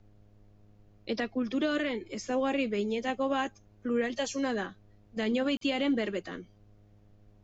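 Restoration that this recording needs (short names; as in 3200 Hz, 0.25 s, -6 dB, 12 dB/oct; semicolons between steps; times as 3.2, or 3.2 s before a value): de-hum 103.5 Hz, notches 7; interpolate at 5.57, 43 ms; expander -51 dBFS, range -21 dB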